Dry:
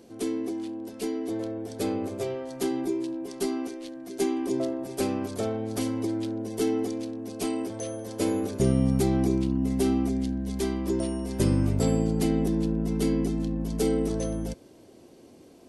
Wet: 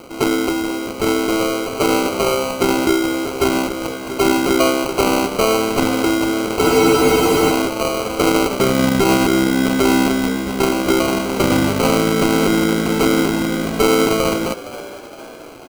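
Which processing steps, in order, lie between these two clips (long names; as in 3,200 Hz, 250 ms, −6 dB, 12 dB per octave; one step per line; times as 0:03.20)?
running median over 15 samples
high-pass filter 260 Hz 6 dB per octave
spectral tilt +3.5 dB per octave
decimation without filtering 25×
echo with shifted repeats 464 ms, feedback 50%, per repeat +69 Hz, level −17 dB
boost into a limiter +25 dB
frozen spectrum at 0:06.64, 0.87 s
level −5 dB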